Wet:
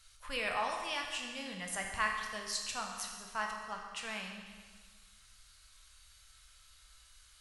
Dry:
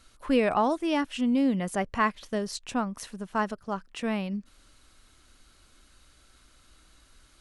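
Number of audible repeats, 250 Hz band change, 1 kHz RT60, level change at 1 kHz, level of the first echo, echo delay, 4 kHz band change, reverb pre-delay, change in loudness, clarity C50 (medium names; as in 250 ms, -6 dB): no echo, -22.5 dB, 1.6 s, -8.0 dB, no echo, no echo, 0.0 dB, 10 ms, -9.0 dB, 3.5 dB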